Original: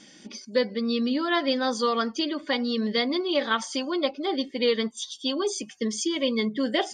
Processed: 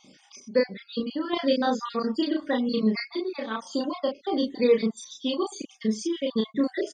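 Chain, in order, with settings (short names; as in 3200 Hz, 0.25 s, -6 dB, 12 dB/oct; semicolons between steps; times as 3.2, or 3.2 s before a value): random spectral dropouts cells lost 45%; tilt shelf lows +4 dB, about 1100 Hz; random-step tremolo 3 Hz; doubler 32 ms -3 dB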